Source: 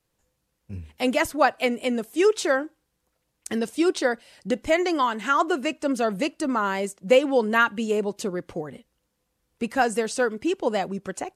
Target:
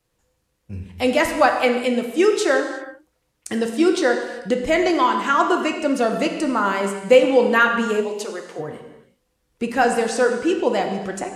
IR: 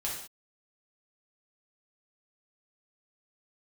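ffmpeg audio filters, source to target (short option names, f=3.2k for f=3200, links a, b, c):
-filter_complex "[0:a]asplit=3[a][b][c];[a]afade=t=out:st=8:d=0.02[d];[b]highpass=520,afade=t=in:st=8:d=0.02,afade=t=out:st=8.58:d=0.02[e];[c]afade=t=in:st=8.58:d=0.02[f];[d][e][f]amix=inputs=3:normalize=0,asplit=2[g][h];[h]highshelf=f=8.5k:g=-7[i];[1:a]atrim=start_sample=2205,asetrate=24696,aresample=44100[j];[i][j]afir=irnorm=-1:irlink=0,volume=-8dB[k];[g][k]amix=inputs=2:normalize=0"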